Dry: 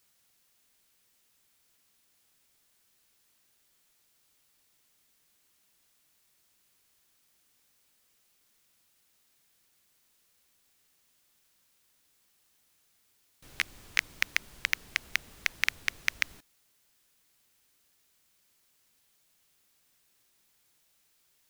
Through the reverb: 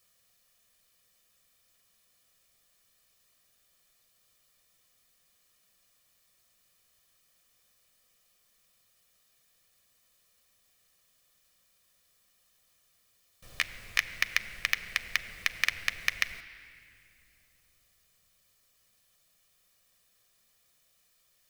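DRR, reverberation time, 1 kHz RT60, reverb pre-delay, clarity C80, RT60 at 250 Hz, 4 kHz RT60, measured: 10.0 dB, 2.7 s, 2.4 s, 5 ms, 13.5 dB, 4.1 s, 2.0 s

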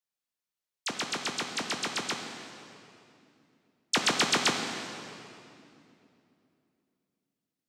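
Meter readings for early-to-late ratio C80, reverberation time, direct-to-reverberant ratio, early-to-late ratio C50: 5.5 dB, 2.7 s, 3.0 dB, 4.5 dB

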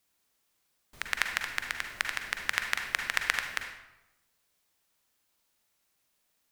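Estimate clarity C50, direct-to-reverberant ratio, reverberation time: 5.0 dB, 4.0 dB, 0.95 s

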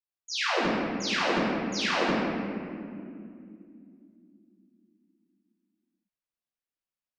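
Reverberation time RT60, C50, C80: 2.5 s, −3.0 dB, −1.0 dB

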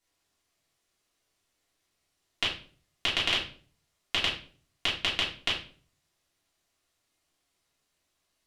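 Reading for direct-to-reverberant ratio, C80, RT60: −8.0 dB, 11.5 dB, 0.45 s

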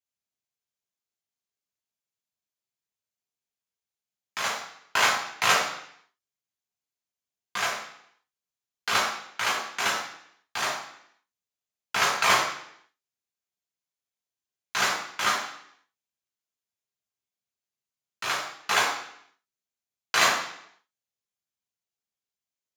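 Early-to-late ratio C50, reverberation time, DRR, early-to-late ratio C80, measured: 4.5 dB, 0.70 s, −3.0 dB, 7.5 dB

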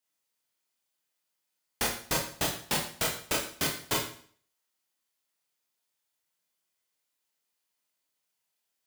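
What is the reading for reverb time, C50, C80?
0.50 s, 4.5 dB, 9.5 dB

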